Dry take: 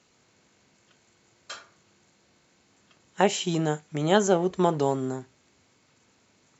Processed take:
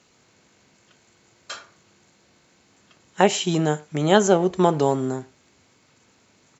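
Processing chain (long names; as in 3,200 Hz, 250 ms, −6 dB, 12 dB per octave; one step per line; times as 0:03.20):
far-end echo of a speakerphone 100 ms, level −24 dB
level +4.5 dB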